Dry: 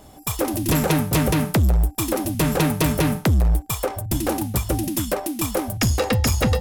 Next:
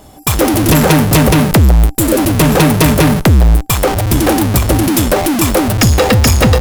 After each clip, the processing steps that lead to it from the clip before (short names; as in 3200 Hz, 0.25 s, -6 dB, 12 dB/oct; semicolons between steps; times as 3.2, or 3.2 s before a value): spectral delete 1.98–2.18, 670–6700 Hz; in parallel at -3 dB: Schmitt trigger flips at -30.5 dBFS; on the sum: gain +7 dB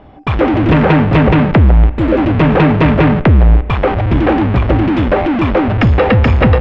LPF 2700 Hz 24 dB/oct; spring tank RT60 3.8 s, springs 35 ms, DRR 19.5 dB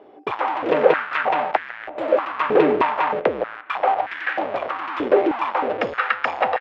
outdoor echo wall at 240 m, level -15 dB; stepped high-pass 3.2 Hz 400–1700 Hz; gain -9.5 dB